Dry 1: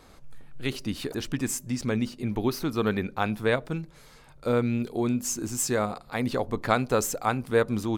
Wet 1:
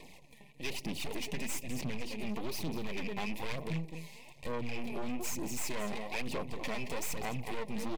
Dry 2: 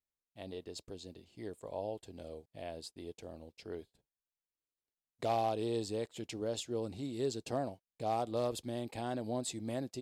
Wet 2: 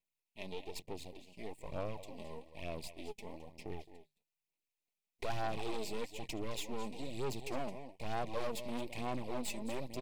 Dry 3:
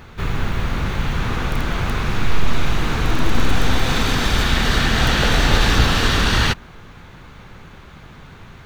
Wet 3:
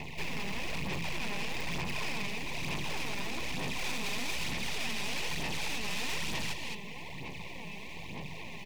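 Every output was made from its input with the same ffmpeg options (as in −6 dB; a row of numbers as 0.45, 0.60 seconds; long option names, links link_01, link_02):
-af "acompressor=threshold=-19dB:ratio=5,highpass=frequency=71:poles=1,lowshelf=frequency=98:gain=-9.5,bandreject=frequency=50:width_type=h:width=6,bandreject=frequency=100:width_type=h:width=6,bandreject=frequency=150:width_type=h:width=6,aecho=1:1:216:0.211,aeval=exprs='max(val(0),0)':channel_layout=same,aphaser=in_gain=1:out_gain=1:delay=5:decay=0.51:speed=1.1:type=sinusoidal,asuperstop=centerf=1400:order=12:qfactor=1.9,alimiter=limit=-21dB:level=0:latency=1:release=127,equalizer=frequency=100:width_type=o:width=0.33:gain=-3,equalizer=frequency=160:width_type=o:width=0.33:gain=7,equalizer=frequency=2500:width_type=o:width=0.33:gain=9,acontrast=60,asoftclip=type=tanh:threshold=-26dB,volume=-3.5dB"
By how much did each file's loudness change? 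−11.0, −4.0, −16.5 LU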